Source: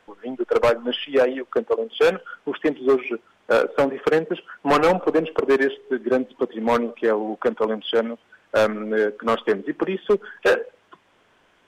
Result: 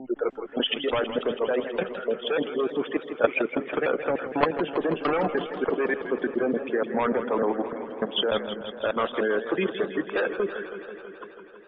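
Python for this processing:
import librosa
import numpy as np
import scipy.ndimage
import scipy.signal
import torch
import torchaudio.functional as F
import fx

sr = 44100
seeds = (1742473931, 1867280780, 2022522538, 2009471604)

y = fx.block_reorder(x, sr, ms=297.0, group=2)
y = fx.spec_gate(y, sr, threshold_db=-30, keep='strong')
y = fx.high_shelf(y, sr, hz=7100.0, db=-6.5)
y = fx.hpss(y, sr, part='harmonic', gain_db=-5)
y = fx.high_shelf(y, sr, hz=3200.0, db=5.0)
y = fx.level_steps(y, sr, step_db=15)
y = fx.env_lowpass(y, sr, base_hz=1900.0, full_db=-31.0)
y = fx.echo_warbled(y, sr, ms=163, feedback_pct=76, rate_hz=2.8, cents=115, wet_db=-11)
y = F.gain(torch.from_numpy(y), 6.0).numpy()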